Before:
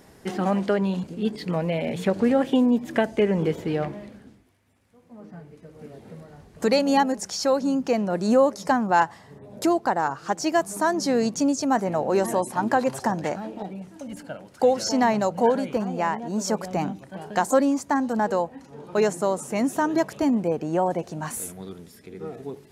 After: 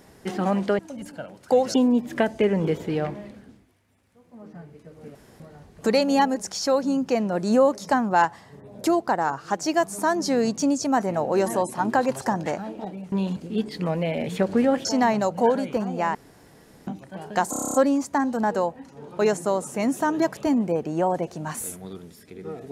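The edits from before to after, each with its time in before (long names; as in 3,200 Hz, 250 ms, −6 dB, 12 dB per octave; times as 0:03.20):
0:00.79–0:02.52: swap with 0:13.90–0:14.85
0:05.93–0:06.18: fill with room tone
0:16.15–0:16.87: fill with room tone
0:17.50: stutter 0.03 s, 9 plays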